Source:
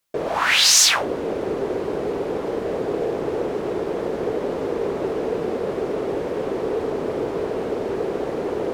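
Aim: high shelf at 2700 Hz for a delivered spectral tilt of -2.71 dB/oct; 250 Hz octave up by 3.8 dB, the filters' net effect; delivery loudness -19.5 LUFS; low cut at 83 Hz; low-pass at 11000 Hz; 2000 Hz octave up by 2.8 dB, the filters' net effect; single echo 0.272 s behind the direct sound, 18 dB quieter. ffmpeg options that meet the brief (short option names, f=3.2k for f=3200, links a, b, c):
-af "highpass=83,lowpass=11k,equalizer=f=250:t=o:g=5.5,equalizer=f=2k:t=o:g=5,highshelf=f=2.7k:g=-3.5,aecho=1:1:272:0.126,volume=2dB"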